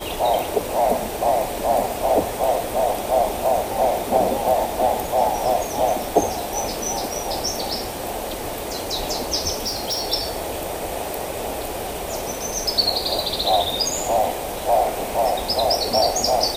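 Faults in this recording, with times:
0:09.66–0:10.13: clipping −20.5 dBFS

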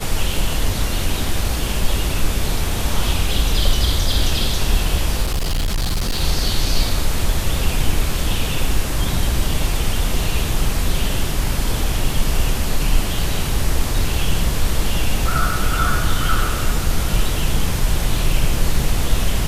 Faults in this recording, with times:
0:05.22–0:06.22: clipping −16 dBFS

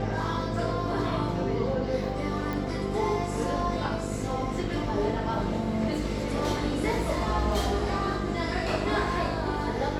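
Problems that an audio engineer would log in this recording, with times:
mains buzz 50 Hz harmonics 10 −33 dBFS
0:02.53: click

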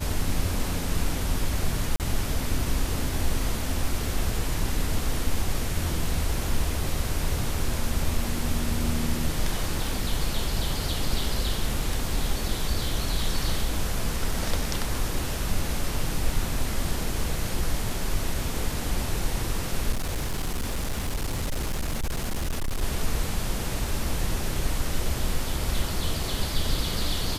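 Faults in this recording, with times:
0:01.96–0:02.00: drop-out 38 ms
0:19.91–0:22.83: clipping −23.5 dBFS

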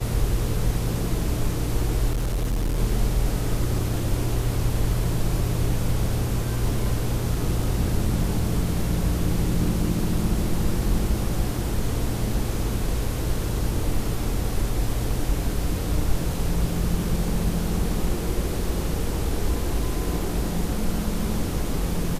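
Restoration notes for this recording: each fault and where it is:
0:02.10–0:02.80: clipping −20.5 dBFS

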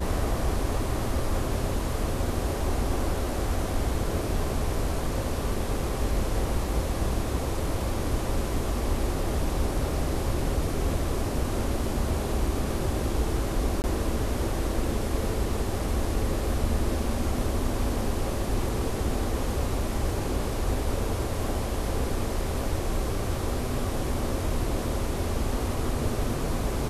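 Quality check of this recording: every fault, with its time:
0:13.82–0:13.84: drop-out 19 ms

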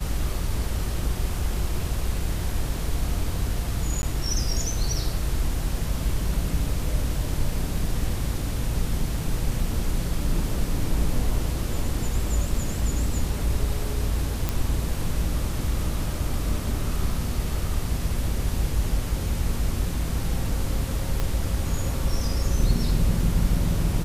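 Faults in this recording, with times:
0:04.02–0:04.03: drop-out
0:14.49: click
0:21.20: click −13 dBFS

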